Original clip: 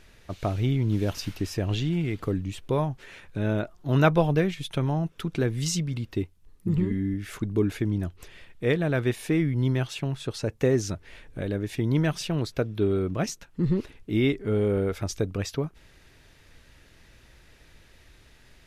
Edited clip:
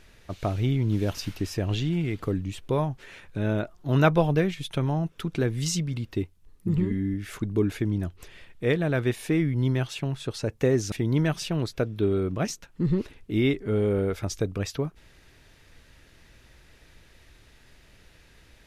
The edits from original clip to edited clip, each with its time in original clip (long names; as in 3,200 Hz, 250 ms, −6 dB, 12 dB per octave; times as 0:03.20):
0:10.92–0:11.71: remove